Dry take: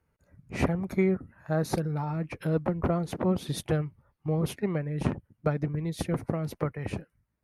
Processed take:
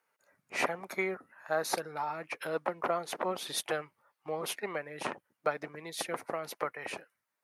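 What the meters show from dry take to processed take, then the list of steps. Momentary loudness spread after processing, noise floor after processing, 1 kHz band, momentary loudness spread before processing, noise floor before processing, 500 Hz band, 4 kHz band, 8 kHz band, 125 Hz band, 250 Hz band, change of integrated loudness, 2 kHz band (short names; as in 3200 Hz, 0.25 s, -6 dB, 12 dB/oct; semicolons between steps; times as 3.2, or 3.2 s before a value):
8 LU, -85 dBFS, +2.0 dB, 6 LU, -78 dBFS, -4.0 dB, +4.0 dB, +4.0 dB, -23.0 dB, -15.0 dB, -5.5 dB, +4.0 dB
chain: HPF 740 Hz 12 dB/oct; gain +4 dB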